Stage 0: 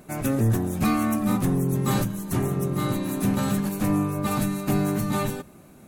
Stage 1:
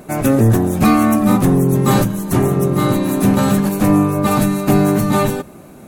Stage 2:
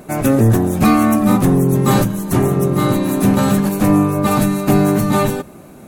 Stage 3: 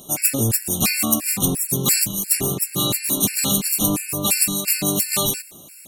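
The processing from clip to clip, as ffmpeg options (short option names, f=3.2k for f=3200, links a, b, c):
-af "equalizer=f=540:w=0.52:g=4.5,volume=8dB"
-af anull
-af "aexciter=amount=11.8:drive=1.2:freq=2.3k,afftfilt=real='re*gt(sin(2*PI*2.9*pts/sr)*(1-2*mod(floor(b*sr/1024/1400),2)),0)':imag='im*gt(sin(2*PI*2.9*pts/sr)*(1-2*mod(floor(b*sr/1024/1400),2)),0)':win_size=1024:overlap=0.75,volume=-9dB"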